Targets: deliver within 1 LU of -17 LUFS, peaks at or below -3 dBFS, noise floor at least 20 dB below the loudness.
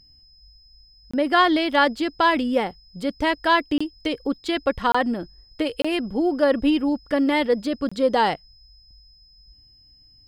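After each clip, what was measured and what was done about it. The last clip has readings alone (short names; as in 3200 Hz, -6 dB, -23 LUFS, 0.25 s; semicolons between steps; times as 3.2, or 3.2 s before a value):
dropouts 5; longest dropout 25 ms; steady tone 5100 Hz; tone level -52 dBFS; loudness -22.0 LUFS; peak -6.5 dBFS; loudness target -17.0 LUFS
-> interpolate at 1.11/3.78/4.92/5.82/7.89, 25 ms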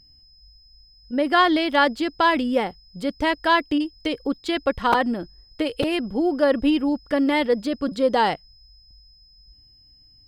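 dropouts 0; steady tone 5100 Hz; tone level -52 dBFS
-> notch 5100 Hz, Q 30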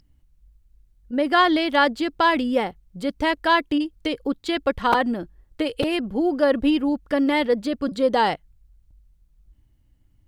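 steady tone none; loudness -22.0 LUFS; peak -6.5 dBFS; loudness target -17.0 LUFS
-> gain +5 dB; limiter -3 dBFS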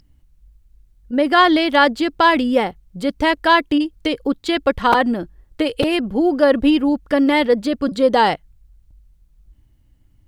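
loudness -17.0 LUFS; peak -3.0 dBFS; noise floor -56 dBFS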